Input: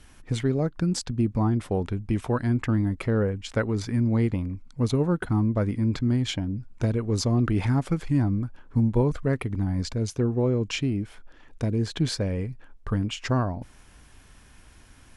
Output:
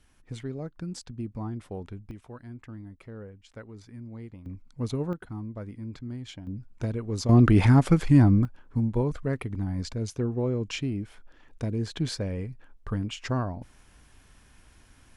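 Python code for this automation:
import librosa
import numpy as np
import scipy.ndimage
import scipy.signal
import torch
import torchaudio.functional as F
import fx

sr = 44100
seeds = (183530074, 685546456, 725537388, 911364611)

y = fx.gain(x, sr, db=fx.steps((0.0, -11.0), (2.11, -18.5), (4.46, -6.5), (5.13, -13.5), (6.47, -5.5), (7.29, 5.5), (8.45, -4.0)))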